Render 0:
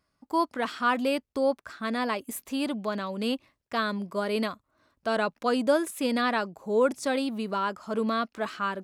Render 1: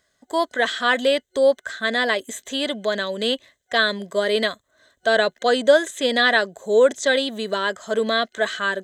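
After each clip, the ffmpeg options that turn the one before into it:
-filter_complex "[0:a]superequalizer=7b=2.51:8b=2.82:11b=3.55:13b=3.16:15b=3.55,acrossover=split=6300[a][b];[b]acompressor=threshold=-52dB:ratio=4:attack=1:release=60[c];[a][c]amix=inputs=2:normalize=0,highshelf=f=2.2k:g=8"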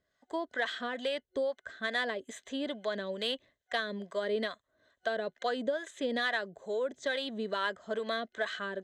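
-filter_complex "[0:a]acompressor=threshold=-19dB:ratio=12,acrossover=split=580[a][b];[a]aeval=exprs='val(0)*(1-0.7/2+0.7/2*cos(2*PI*2.3*n/s))':c=same[c];[b]aeval=exprs='val(0)*(1-0.7/2-0.7/2*cos(2*PI*2.3*n/s))':c=same[d];[c][d]amix=inputs=2:normalize=0,adynamicsmooth=sensitivity=1:basefreq=5k,volume=-5.5dB"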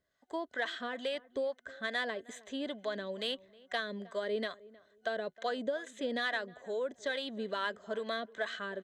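-filter_complex "[0:a]asplit=2[a][b];[b]adelay=313,lowpass=f=1.2k:p=1,volume=-20dB,asplit=2[c][d];[d]adelay=313,lowpass=f=1.2k:p=1,volume=0.24[e];[a][c][e]amix=inputs=3:normalize=0,volume=-2.5dB"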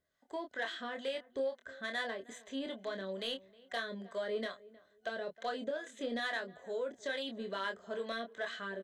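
-filter_complex "[0:a]asoftclip=type=tanh:threshold=-23dB,asplit=2[a][b];[b]adelay=26,volume=-5.5dB[c];[a][c]amix=inputs=2:normalize=0,volume=-3dB"

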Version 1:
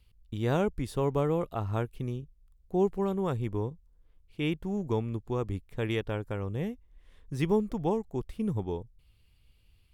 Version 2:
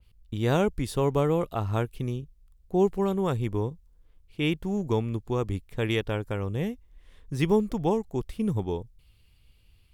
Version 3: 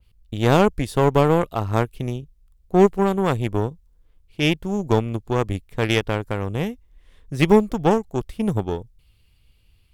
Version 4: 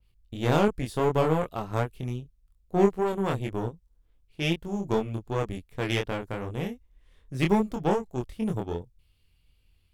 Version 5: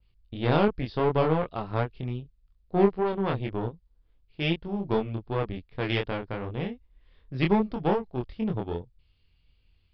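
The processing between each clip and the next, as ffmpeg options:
-af "adynamicequalizer=threshold=0.00355:dfrequency=2300:dqfactor=0.7:tfrequency=2300:tqfactor=0.7:attack=5:release=100:ratio=0.375:range=2:mode=boostabove:tftype=highshelf,volume=3.5dB"
-af "aeval=exprs='0.335*(cos(1*acos(clip(val(0)/0.335,-1,1)))-cos(1*PI/2))+0.0266*(cos(7*acos(clip(val(0)/0.335,-1,1)))-cos(7*PI/2))':c=same,volume=8.5dB"
-af "flanger=delay=22.5:depth=3:speed=2.6,volume=-4dB"
-af "aresample=11025,aresample=44100"

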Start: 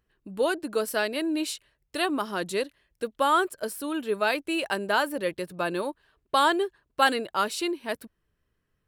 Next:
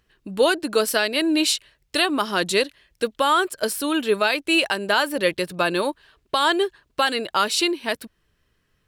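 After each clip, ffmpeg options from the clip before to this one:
-af "equalizer=f=4k:t=o:w=2.3:g=7,alimiter=limit=-15.5dB:level=0:latency=1:release=273,volume=7dB"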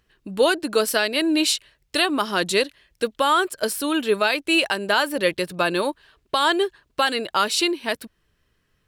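-af anull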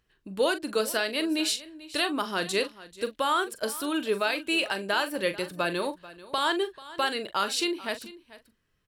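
-filter_complex "[0:a]asplit=2[a][b];[b]adelay=41,volume=-11.5dB[c];[a][c]amix=inputs=2:normalize=0,aecho=1:1:439:0.126,volume=-7dB"

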